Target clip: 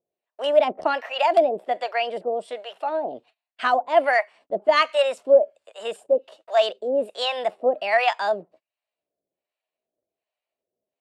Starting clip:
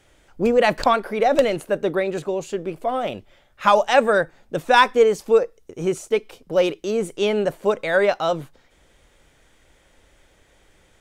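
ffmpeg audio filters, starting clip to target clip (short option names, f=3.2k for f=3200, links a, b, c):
-filter_complex "[0:a]highpass=280,equalizer=f=510:t=q:w=4:g=7,equalizer=f=2.3k:t=q:w=4:g=6,equalizer=f=5.1k:t=q:w=4:g=-9,lowpass=f=6.9k:w=0.5412,lowpass=f=6.9k:w=1.3066,acrossover=split=500[a][b];[a]acompressor=mode=upward:threshold=-42dB:ratio=2.5[c];[c][b]amix=inputs=2:normalize=0,acrossover=split=570[d][e];[d]aeval=exprs='val(0)*(1-1/2+1/2*cos(2*PI*1.3*n/s))':c=same[f];[e]aeval=exprs='val(0)*(1-1/2-1/2*cos(2*PI*1.3*n/s))':c=same[g];[f][g]amix=inputs=2:normalize=0,asetrate=53981,aresample=44100,atempo=0.816958,agate=range=-32dB:threshold=-50dB:ratio=16:detection=peak,volume=1dB"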